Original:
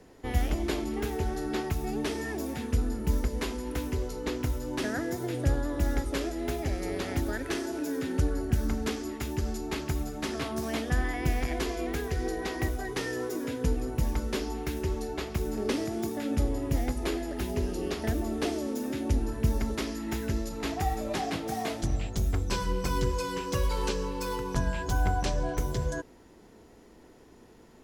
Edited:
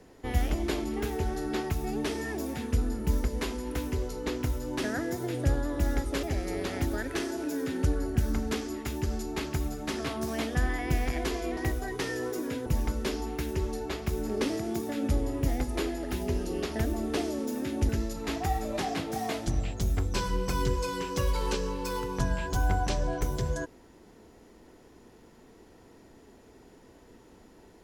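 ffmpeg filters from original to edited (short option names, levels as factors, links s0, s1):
-filter_complex "[0:a]asplit=5[s0][s1][s2][s3][s4];[s0]atrim=end=6.232[s5];[s1]atrim=start=6.578:end=11.922[s6];[s2]atrim=start=12.538:end=13.632[s7];[s3]atrim=start=13.938:end=19.172[s8];[s4]atrim=start=20.248[s9];[s5][s6]acrossfade=d=0.004:c1=hsin:c2=hsin[s10];[s10][s7]acrossfade=d=0.004:c1=hsin:c2=hsin[s11];[s11][s8]acrossfade=d=0.004:c1=hsin:c2=hsin[s12];[s12][s9]acrossfade=d=0.004:c1=hsin:c2=hsin"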